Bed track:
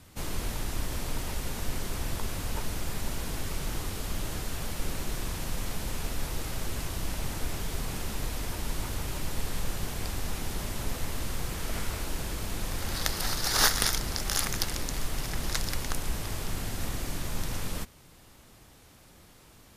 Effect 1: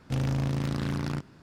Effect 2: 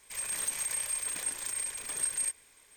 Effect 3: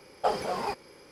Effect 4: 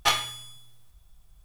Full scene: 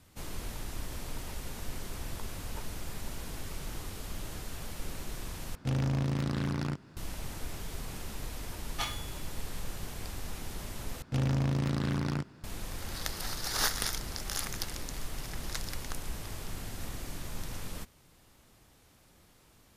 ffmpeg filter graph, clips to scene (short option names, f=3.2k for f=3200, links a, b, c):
-filter_complex "[1:a]asplit=2[a][b];[0:a]volume=-6.5dB[c];[a]acompressor=mode=upward:threshold=-47dB:ratio=2.5:attack=3.2:release=140:knee=2.83:detection=peak[d];[c]asplit=3[e][f][g];[e]atrim=end=5.554[h];[d]atrim=end=1.42,asetpts=PTS-STARTPTS,volume=-2dB[i];[f]atrim=start=6.966:end=11.024[j];[b]atrim=end=1.42,asetpts=PTS-STARTPTS,volume=-1dB[k];[g]atrim=start=12.436[l];[4:a]atrim=end=1.44,asetpts=PTS-STARTPTS,volume=-11.5dB,afade=t=in:d=0.1,afade=t=out:st=1.34:d=0.1,adelay=8730[m];[h][i]acrossfade=d=0.004:c1=hsin:c2=hsin[n];[n][j]acrossfade=d=0.004:c1=hsin:c2=hsin[o];[o][k]acrossfade=d=0.004:c1=hsin:c2=hsin[p];[p][l]acrossfade=d=0.004:c1=hsin:c2=hsin[q];[q][m]amix=inputs=2:normalize=0"